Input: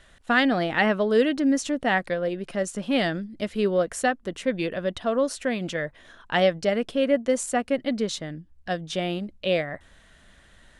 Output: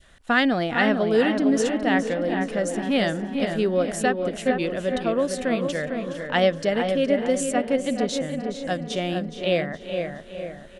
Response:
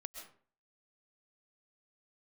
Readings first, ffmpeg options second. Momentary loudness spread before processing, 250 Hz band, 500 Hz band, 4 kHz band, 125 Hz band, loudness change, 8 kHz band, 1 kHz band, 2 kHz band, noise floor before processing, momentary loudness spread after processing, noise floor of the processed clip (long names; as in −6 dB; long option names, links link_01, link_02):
10 LU, +2.5 dB, +2.0 dB, +1.0 dB, +2.5 dB, +1.5 dB, +1.0 dB, +1.5 dB, +1.0 dB, −56 dBFS, 9 LU, −42 dBFS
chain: -filter_complex "[0:a]asplit=2[link_01][link_02];[link_02]aecho=0:1:418|836|1254|1672:0.224|0.0985|0.0433|0.0191[link_03];[link_01][link_03]amix=inputs=2:normalize=0,adynamicequalizer=threshold=0.0141:dfrequency=1200:dqfactor=0.78:tfrequency=1200:tqfactor=0.78:attack=5:release=100:ratio=0.375:range=2:mode=cutabove:tftype=bell,asplit=2[link_04][link_05];[link_05]adelay=454,lowpass=frequency=1900:poles=1,volume=-5dB,asplit=2[link_06][link_07];[link_07]adelay=454,lowpass=frequency=1900:poles=1,volume=0.49,asplit=2[link_08][link_09];[link_09]adelay=454,lowpass=frequency=1900:poles=1,volume=0.49,asplit=2[link_10][link_11];[link_11]adelay=454,lowpass=frequency=1900:poles=1,volume=0.49,asplit=2[link_12][link_13];[link_13]adelay=454,lowpass=frequency=1900:poles=1,volume=0.49,asplit=2[link_14][link_15];[link_15]adelay=454,lowpass=frequency=1900:poles=1,volume=0.49[link_16];[link_06][link_08][link_10][link_12][link_14][link_16]amix=inputs=6:normalize=0[link_17];[link_04][link_17]amix=inputs=2:normalize=0,volume=1dB"